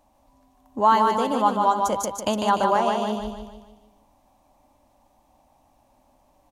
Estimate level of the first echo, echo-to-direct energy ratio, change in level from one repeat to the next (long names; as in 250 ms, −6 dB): −4.0 dB, −3.0 dB, −6.5 dB